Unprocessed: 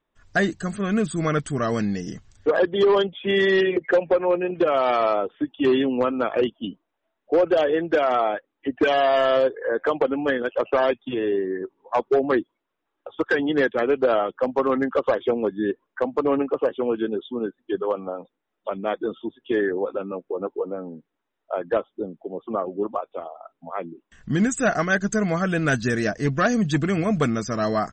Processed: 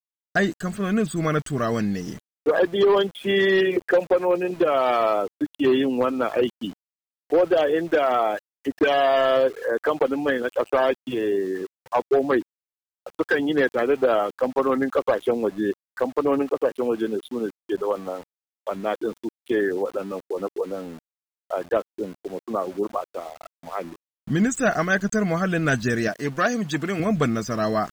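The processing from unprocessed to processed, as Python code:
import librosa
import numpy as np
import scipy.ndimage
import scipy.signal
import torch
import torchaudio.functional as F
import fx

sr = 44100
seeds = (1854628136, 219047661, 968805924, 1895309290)

y = fx.highpass(x, sr, hz=320.0, slope=6, at=(26.08, 27.0))
y = np.where(np.abs(y) >= 10.0 ** (-40.5 / 20.0), y, 0.0)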